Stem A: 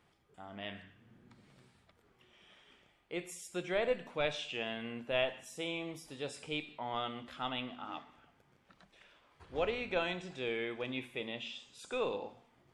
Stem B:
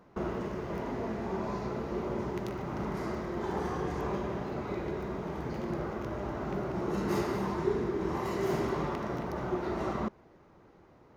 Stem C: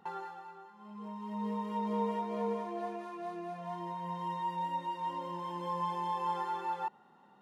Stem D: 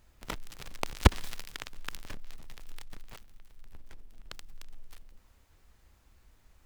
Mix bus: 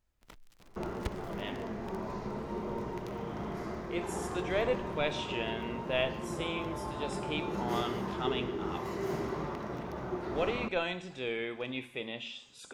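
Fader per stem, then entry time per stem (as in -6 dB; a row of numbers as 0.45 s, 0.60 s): +1.5 dB, -4.0 dB, -9.5 dB, -16.5 dB; 0.80 s, 0.60 s, 0.75 s, 0.00 s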